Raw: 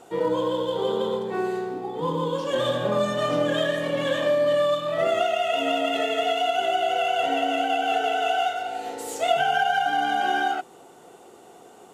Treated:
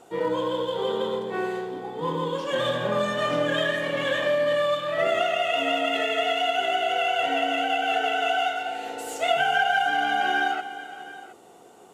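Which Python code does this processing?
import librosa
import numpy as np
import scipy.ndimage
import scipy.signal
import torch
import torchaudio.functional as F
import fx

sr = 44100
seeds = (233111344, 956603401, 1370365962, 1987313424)

y = fx.dynamic_eq(x, sr, hz=2000.0, q=1.1, threshold_db=-42.0, ratio=4.0, max_db=7)
y = fx.echo_multitap(y, sr, ms=(326, 417, 720), db=(-18.5, -18.5, -17.5))
y = F.gain(torch.from_numpy(y), -2.5).numpy()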